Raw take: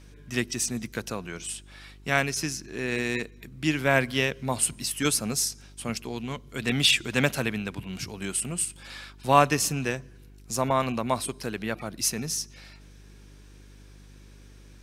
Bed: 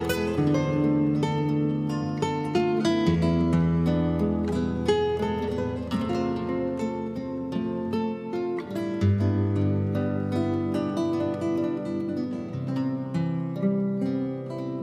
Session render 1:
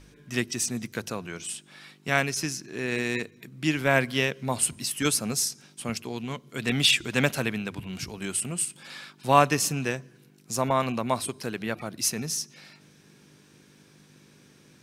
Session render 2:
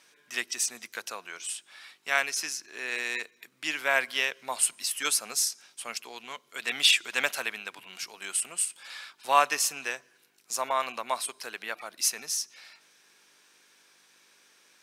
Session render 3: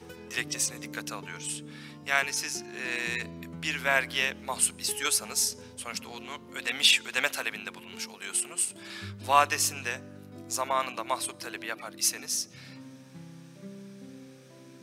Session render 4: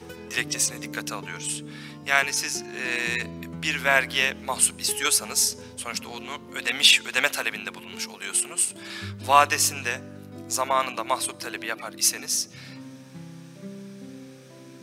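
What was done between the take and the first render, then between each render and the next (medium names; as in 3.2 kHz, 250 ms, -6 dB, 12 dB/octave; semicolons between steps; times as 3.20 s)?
de-hum 50 Hz, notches 2
high-pass 810 Hz 12 dB/octave
add bed -20 dB
trim +5 dB; peak limiter -3 dBFS, peak gain reduction 0.5 dB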